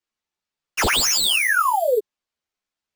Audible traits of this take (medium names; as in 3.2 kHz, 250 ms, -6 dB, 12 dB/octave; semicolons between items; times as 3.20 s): aliases and images of a low sample rate 12 kHz, jitter 0%; a shimmering, thickened sound